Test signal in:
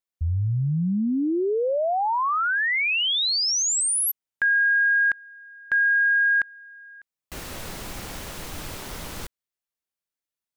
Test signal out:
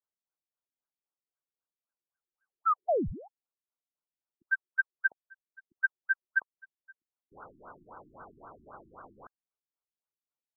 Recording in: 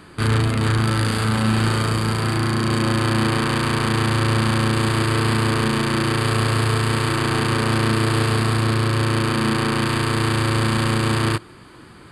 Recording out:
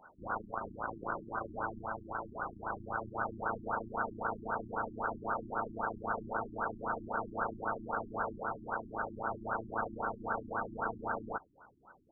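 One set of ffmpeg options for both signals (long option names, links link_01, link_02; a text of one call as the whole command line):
ffmpeg -i in.wav -af "lowpass=frequency=2700:width_type=q:width=0.5098,lowpass=frequency=2700:width_type=q:width=0.6013,lowpass=frequency=2700:width_type=q:width=0.9,lowpass=frequency=2700:width_type=q:width=2.563,afreqshift=-3200,afftfilt=real='re*lt(b*sr/1024,350*pow(1600/350,0.5+0.5*sin(2*PI*3.8*pts/sr)))':imag='im*lt(b*sr/1024,350*pow(1600/350,0.5+0.5*sin(2*PI*3.8*pts/sr)))':win_size=1024:overlap=0.75" out.wav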